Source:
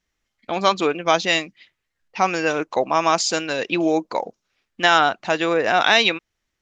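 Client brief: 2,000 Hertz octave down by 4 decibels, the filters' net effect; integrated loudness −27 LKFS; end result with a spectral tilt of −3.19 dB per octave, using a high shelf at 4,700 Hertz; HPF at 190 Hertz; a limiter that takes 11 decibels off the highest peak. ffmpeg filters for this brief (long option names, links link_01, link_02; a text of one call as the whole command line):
ffmpeg -i in.wav -af "highpass=190,equalizer=frequency=2000:width_type=o:gain=-4.5,highshelf=frequency=4700:gain=-5.5,volume=-1dB,alimiter=limit=-15dB:level=0:latency=1" out.wav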